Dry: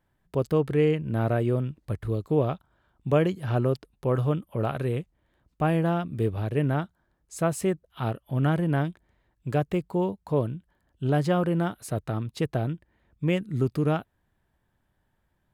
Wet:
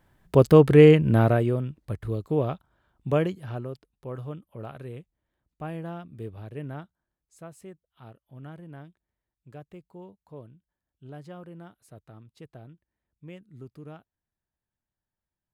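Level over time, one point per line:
0:01.07 +9 dB
0:01.58 −1.5 dB
0:03.20 −1.5 dB
0:03.68 −11.5 dB
0:06.80 −11.5 dB
0:07.50 −19 dB

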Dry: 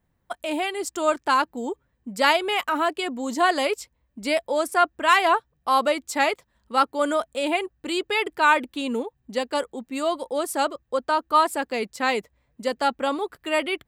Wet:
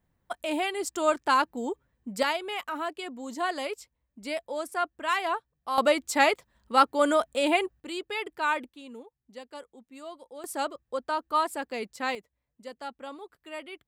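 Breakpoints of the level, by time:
−2.5 dB
from 0:02.23 −9.5 dB
from 0:05.78 0 dB
from 0:07.80 −9 dB
from 0:08.69 −17.5 dB
from 0:10.44 −7 dB
from 0:12.15 −16 dB

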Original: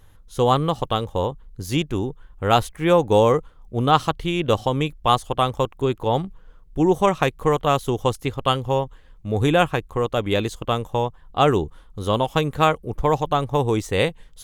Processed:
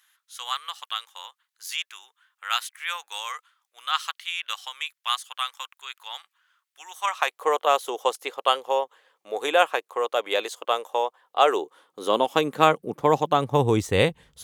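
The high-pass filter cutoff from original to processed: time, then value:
high-pass filter 24 dB per octave
0:06.93 1,400 Hz
0:07.46 480 Hz
0:11.41 480 Hz
0:12.77 170 Hz
0:13.36 170 Hz
0:13.89 60 Hz

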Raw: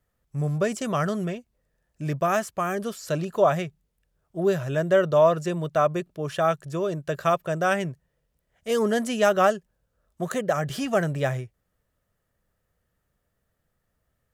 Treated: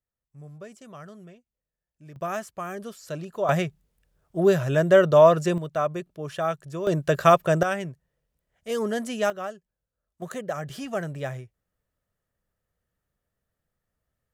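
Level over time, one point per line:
−18 dB
from 0:02.16 −7 dB
from 0:03.49 +3.5 dB
from 0:05.58 −4 dB
from 0:06.87 +6 dB
from 0:07.63 −4 dB
from 0:09.30 −14 dB
from 0:10.22 −6.5 dB

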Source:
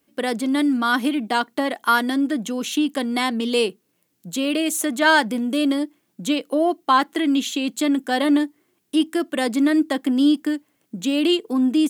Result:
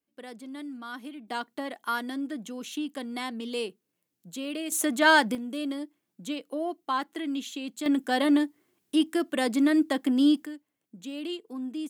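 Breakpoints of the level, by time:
−19.5 dB
from 0:01.28 −12 dB
from 0:04.72 −3.5 dB
from 0:05.35 −12 dB
from 0:07.86 −4.5 dB
from 0:10.46 −16 dB

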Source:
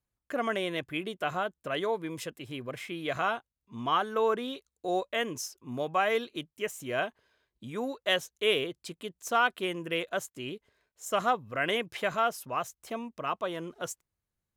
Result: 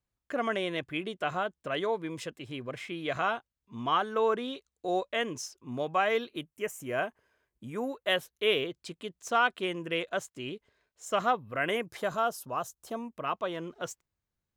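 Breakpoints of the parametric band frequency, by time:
parametric band −12 dB 0.66 octaves
0:06.07 13,000 Hz
0:06.54 3,900 Hz
0:07.78 3,900 Hz
0:08.87 13,000 Hz
0:11.08 13,000 Hz
0:12.09 2,200 Hz
0:12.91 2,200 Hz
0:13.40 11,000 Hz

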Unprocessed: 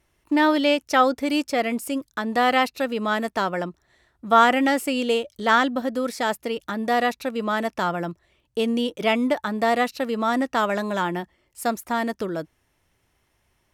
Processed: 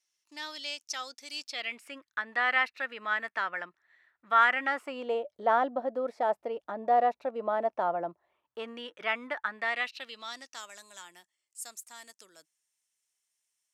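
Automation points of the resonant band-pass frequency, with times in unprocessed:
resonant band-pass, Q 2.3
0:01.33 5,800 Hz
0:01.90 1,800 Hz
0:04.51 1,800 Hz
0:05.21 680 Hz
0:08.07 680 Hz
0:08.81 1,600 Hz
0:09.46 1,600 Hz
0:10.72 7,700 Hz

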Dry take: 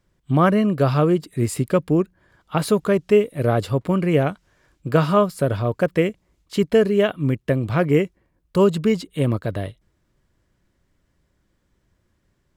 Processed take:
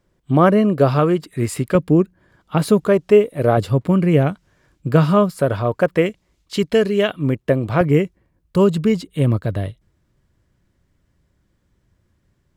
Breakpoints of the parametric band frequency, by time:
parametric band +5.5 dB 2.2 octaves
460 Hz
from 0:00.99 1,500 Hz
from 0:01.75 210 Hz
from 0:02.88 690 Hz
from 0:03.57 150 Hz
from 0:05.31 950 Hz
from 0:06.06 4,200 Hz
from 0:07.19 640 Hz
from 0:07.81 100 Hz

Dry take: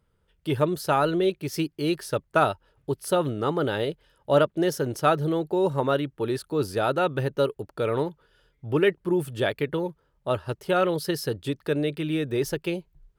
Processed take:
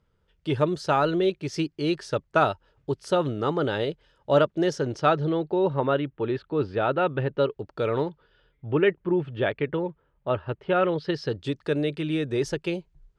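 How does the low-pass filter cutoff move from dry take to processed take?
low-pass filter 24 dB per octave
0:04.65 7,100 Hz
0:05.95 3,300 Hz
0:07.29 3,300 Hz
0:07.81 6,700 Hz
0:08.80 3,100 Hz
0:10.89 3,100 Hz
0:11.56 7,800 Hz

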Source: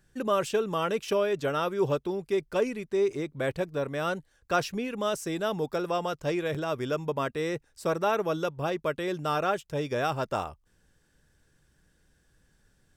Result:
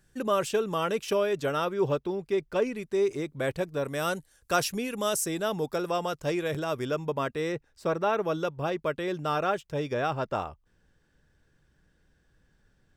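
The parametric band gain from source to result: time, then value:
parametric band 11,000 Hz 1.5 octaves
+3 dB
from 0:01.65 −6 dB
from 0:02.76 +3.5 dB
from 0:03.85 +14 dB
from 0:05.26 +4.5 dB
from 0:06.85 −2 dB
from 0:07.52 −11.5 dB
from 0:08.22 −5 dB
from 0:09.94 −12.5 dB

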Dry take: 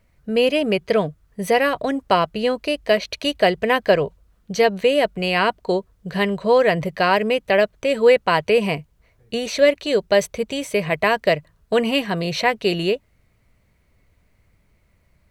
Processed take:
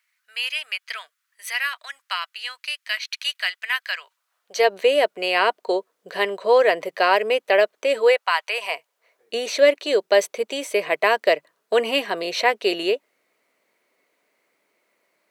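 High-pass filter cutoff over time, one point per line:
high-pass filter 24 dB per octave
0:04.02 1,400 Hz
0:04.73 360 Hz
0:07.98 360 Hz
0:08.33 980 Hz
0:09.36 330 Hz

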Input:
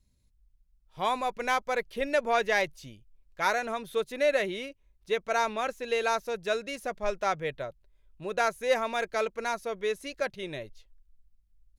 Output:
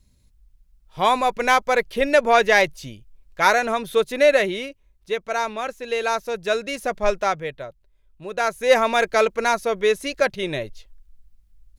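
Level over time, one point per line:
0:04.22 +10 dB
0:05.23 +3 dB
0:05.76 +3 dB
0:07.08 +10 dB
0:07.53 +2 dB
0:08.32 +2 dB
0:08.77 +11 dB

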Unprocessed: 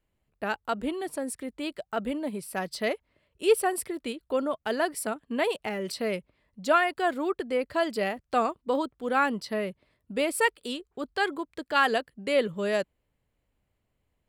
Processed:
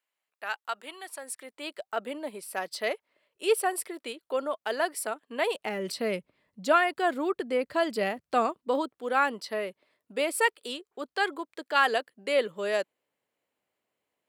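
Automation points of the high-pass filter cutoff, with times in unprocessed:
0:01.15 1,000 Hz
0:01.79 440 Hz
0:05.41 440 Hz
0:05.86 140 Hz
0:08.24 140 Hz
0:09.16 370 Hz

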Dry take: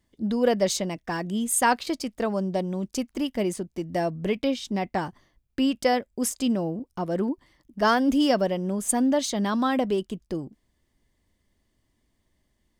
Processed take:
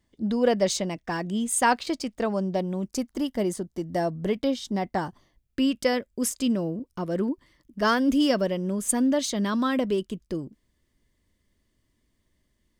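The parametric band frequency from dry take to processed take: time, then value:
parametric band −9.5 dB 0.34 octaves
0:02.44 12,000 Hz
0:03.04 2,500 Hz
0:05.04 2,500 Hz
0:05.60 780 Hz

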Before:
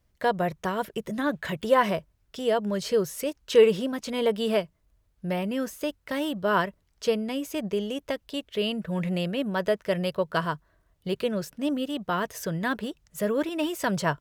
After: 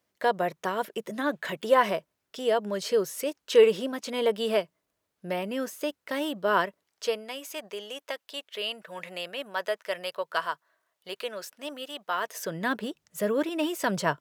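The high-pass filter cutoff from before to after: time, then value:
0:06.63 280 Hz
0:07.38 710 Hz
0:12.14 710 Hz
0:12.67 190 Hz

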